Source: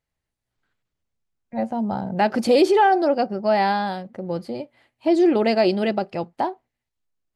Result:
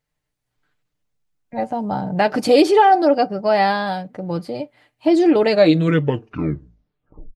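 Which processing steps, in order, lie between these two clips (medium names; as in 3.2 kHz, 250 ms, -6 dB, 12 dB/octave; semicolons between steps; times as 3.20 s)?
tape stop on the ending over 1.91 s; comb 6.7 ms, depth 51%; trim +3 dB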